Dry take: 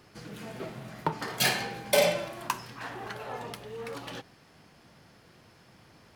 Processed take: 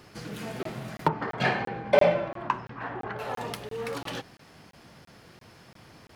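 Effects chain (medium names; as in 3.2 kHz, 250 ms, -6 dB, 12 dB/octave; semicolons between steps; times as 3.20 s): 1.08–3.19 s: low-pass 1.7 kHz 12 dB/octave; crackling interface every 0.34 s, samples 1024, zero, from 0.63 s; trim +5 dB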